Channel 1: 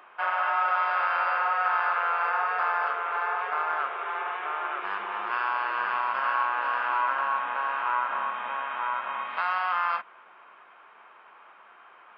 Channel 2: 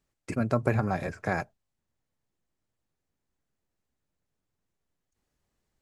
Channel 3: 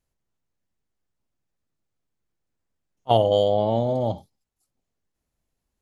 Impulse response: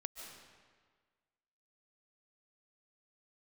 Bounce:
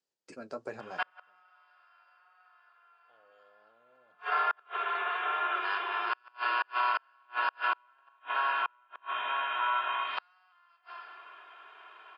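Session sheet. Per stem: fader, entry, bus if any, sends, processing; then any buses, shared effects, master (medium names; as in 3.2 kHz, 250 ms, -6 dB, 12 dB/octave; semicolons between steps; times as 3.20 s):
-4.0 dB, 0.80 s, send -7 dB, treble shelf 2.1 kHz +9 dB; comb 2.9 ms, depth 74%
-6.5 dB, 0.00 s, no send, flange 1 Hz, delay 6.1 ms, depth 6.7 ms, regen -34%
-8.0 dB, 0.00 s, no send, level rider gain up to 15 dB; peak limiter -9 dBFS, peak gain reduction 8 dB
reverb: on, RT60 1.6 s, pre-delay 105 ms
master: inverted gate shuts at -15 dBFS, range -38 dB; cabinet simulation 400–8200 Hz, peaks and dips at 480 Hz +3 dB, 690 Hz -4 dB, 1.1 kHz -4 dB, 2.1 kHz -7 dB, 4.8 kHz +6 dB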